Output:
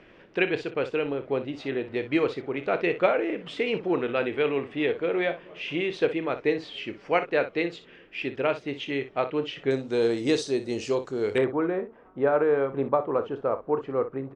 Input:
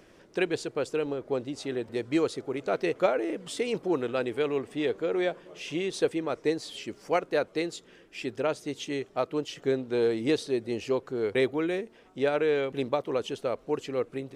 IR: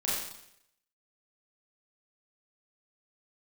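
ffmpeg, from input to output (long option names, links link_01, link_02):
-af "asetnsamples=nb_out_samples=441:pad=0,asendcmd='9.71 lowpass f 7100;11.38 lowpass f 1200',lowpass=frequency=2600:width_type=q:width=1.8,aecho=1:1:29|60:0.237|0.237,volume=1.5dB"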